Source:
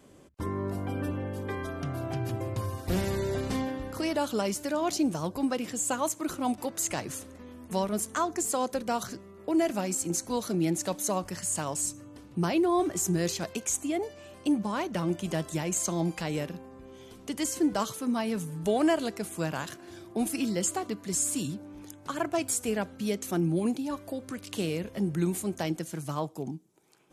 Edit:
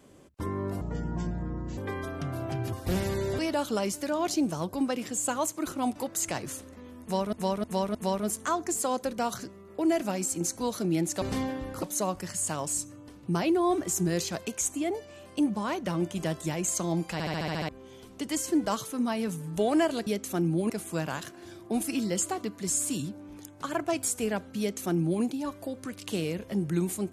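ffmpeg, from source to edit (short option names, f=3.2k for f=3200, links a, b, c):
-filter_complex "[0:a]asplit=20[a][b][c][d][e][f][g][h][i][j][k][l][m][n][o][p][q][r][s][t];[a]atrim=end=0.814[u];[b]atrim=start=0.81:end=1.39,asetpts=PTS-STARTPTS,asetrate=26460,aresample=44100[v];[c]atrim=start=1.386:end=2.342[w];[d]atrim=start=2.738:end=3.402[x];[e]atrim=start=4.008:end=7.952[y];[f]atrim=start=7.638:end=7.952[z];[g]atrim=start=7.638:end=7.952[aa];[h]atrim=start=7.638:end=10.912[ab];[i]atrim=start=3.398:end=4.012[ac];[j]atrim=start=10.908:end=16.282[ad];[k]atrim=start=16.208:end=16.282[ae];[l]atrim=start=16.208:end=16.282[af];[m]atrim=start=16.208:end=16.282[ag];[n]atrim=start=16.208:end=16.282[ah];[o]atrim=start=16.208:end=16.282[ai];[p]atrim=start=16.208:end=16.282[aj];[q]atrim=start=16.208:end=16.282[ak];[r]atrim=start=16.768:end=19.152[al];[s]atrim=start=23.048:end=23.682[am];[t]atrim=start=19.148[an];[u][v]acrossfade=d=0.004:c1=hsin:c2=hsin[ao];[ao][w]acrossfade=d=0.004:c1=hsin:c2=hsin[ap];[ap][x]acrossfade=d=0.004:c1=hsin:c2=hsin[aq];[aq][y]acrossfade=d=0.004:c1=hsin:c2=hsin[ar];[ar][z]acrossfade=d=0.004:c1=hsin:c2=hsin[as];[as][aa]acrossfade=d=0.004:c1=hsin:c2=hsin[at];[at][ab]acrossfade=d=0.004:c1=hsin:c2=hsin[au];[au][ac]acrossfade=d=0.004:c1=hsin:c2=hsin[av];[av][ad]acrossfade=d=0.004:c1=hsin:c2=hsin[aw];[aw][ae]acrossfade=d=0.004:c1=hsin:c2=hsin[ax];[ax][af]acrossfade=d=0.004:c1=hsin:c2=hsin[ay];[ay][ag]acrossfade=d=0.004:c1=hsin:c2=hsin[az];[az][ah]acrossfade=d=0.004:c1=hsin:c2=hsin[ba];[ba][ai]acrossfade=d=0.004:c1=hsin:c2=hsin[bb];[bb][aj]acrossfade=d=0.004:c1=hsin:c2=hsin[bc];[bc][ak]acrossfade=d=0.004:c1=hsin:c2=hsin[bd];[bd][al]acrossfade=d=0.004:c1=hsin:c2=hsin[be];[be][am]acrossfade=d=0.004:c1=hsin:c2=hsin[bf];[bf][an]acrossfade=d=0.004:c1=hsin:c2=hsin"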